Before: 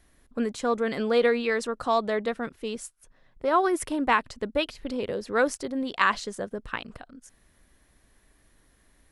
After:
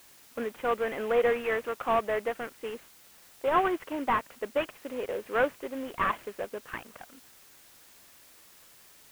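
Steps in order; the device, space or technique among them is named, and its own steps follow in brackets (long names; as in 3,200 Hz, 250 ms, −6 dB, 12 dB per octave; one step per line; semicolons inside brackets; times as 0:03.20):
army field radio (band-pass filter 400–3,000 Hz; variable-slope delta modulation 16 kbit/s; white noise bed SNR 24 dB)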